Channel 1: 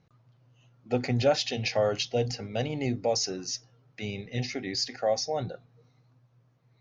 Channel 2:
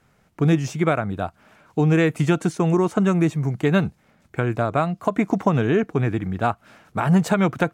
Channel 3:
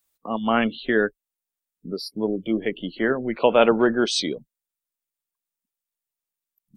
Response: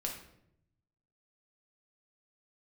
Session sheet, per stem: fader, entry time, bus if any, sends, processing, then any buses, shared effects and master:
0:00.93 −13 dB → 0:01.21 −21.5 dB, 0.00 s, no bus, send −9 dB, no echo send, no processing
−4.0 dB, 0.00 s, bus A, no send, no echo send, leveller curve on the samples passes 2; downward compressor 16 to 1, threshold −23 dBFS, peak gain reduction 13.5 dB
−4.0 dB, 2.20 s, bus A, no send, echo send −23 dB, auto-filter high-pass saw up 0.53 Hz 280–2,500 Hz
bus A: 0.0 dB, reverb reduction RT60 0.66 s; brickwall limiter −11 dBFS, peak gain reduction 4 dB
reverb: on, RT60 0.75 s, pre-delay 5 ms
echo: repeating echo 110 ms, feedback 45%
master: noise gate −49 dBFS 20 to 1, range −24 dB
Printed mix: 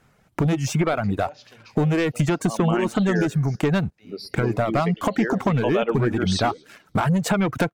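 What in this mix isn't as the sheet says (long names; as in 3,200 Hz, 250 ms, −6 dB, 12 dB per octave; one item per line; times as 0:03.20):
stem 2 −4.0 dB → +6.0 dB
stem 3: missing auto-filter high-pass saw up 0.53 Hz 280–2,500 Hz
master: missing noise gate −49 dBFS 20 to 1, range −24 dB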